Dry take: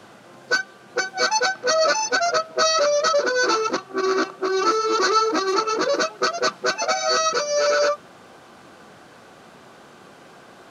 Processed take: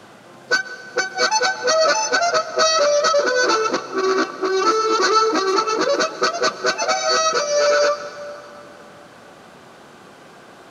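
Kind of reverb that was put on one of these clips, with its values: plate-style reverb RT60 3 s, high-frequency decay 0.7×, pre-delay 110 ms, DRR 13 dB; trim +2.5 dB

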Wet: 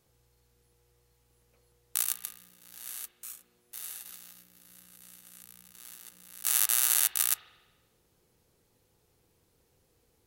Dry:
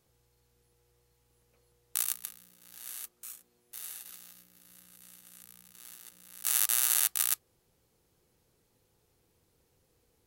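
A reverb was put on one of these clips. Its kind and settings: spring tank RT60 1.2 s, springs 49 ms, chirp 30 ms, DRR 13 dB; trim +1.5 dB

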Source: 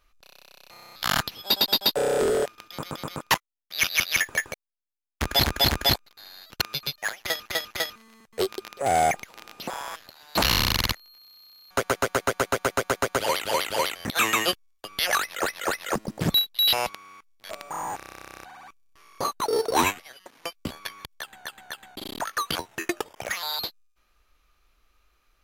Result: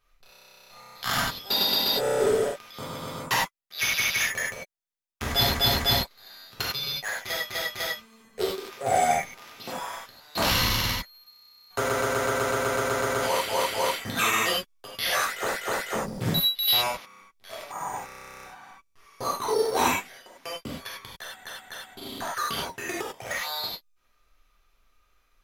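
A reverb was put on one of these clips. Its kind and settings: gated-style reverb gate 120 ms flat, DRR -6 dB; trim -7.5 dB

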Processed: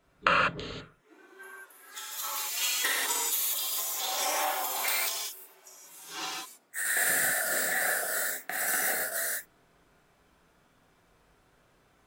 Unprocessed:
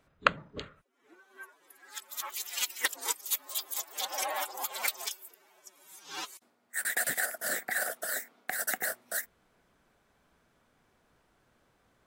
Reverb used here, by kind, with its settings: gated-style reverb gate 220 ms flat, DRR -7 dB; trim -3 dB

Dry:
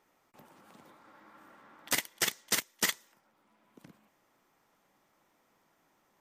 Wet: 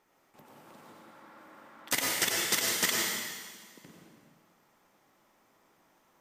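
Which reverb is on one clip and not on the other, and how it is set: plate-style reverb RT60 1.6 s, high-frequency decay 1×, pre-delay 80 ms, DRR -2 dB

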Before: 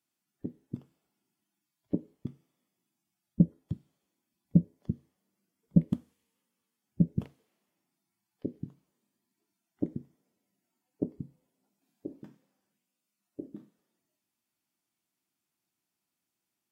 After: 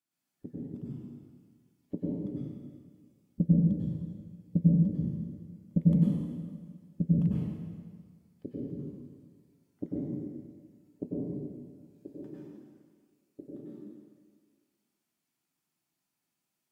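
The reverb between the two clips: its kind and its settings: plate-style reverb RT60 1.7 s, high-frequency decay 0.85×, pre-delay 85 ms, DRR -7.5 dB; trim -6.5 dB

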